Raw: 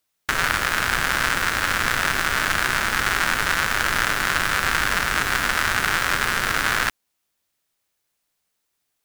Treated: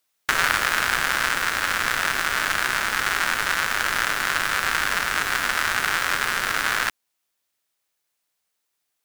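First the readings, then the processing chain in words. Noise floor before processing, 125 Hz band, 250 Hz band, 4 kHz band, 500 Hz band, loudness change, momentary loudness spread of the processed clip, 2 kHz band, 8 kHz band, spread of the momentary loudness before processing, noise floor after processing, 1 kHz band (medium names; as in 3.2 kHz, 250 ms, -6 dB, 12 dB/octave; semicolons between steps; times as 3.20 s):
-76 dBFS, -8.5 dB, -5.5 dB, -1.0 dB, -2.5 dB, -1.0 dB, 2 LU, -1.0 dB, -1.0 dB, 1 LU, -77 dBFS, -1.5 dB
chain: bass shelf 260 Hz -9 dB; gain riding 2 s; trim -1 dB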